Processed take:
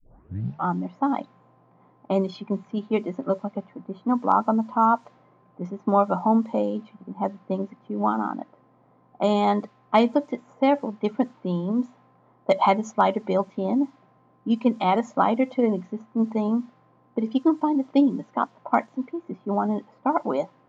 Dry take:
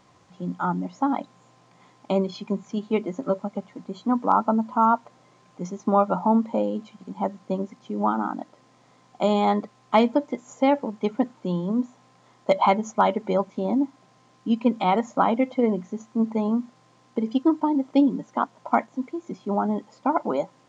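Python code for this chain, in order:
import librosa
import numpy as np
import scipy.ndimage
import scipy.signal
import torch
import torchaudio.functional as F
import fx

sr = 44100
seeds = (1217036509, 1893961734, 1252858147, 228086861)

y = fx.tape_start_head(x, sr, length_s=0.66)
y = fx.env_lowpass(y, sr, base_hz=930.0, full_db=-17.5)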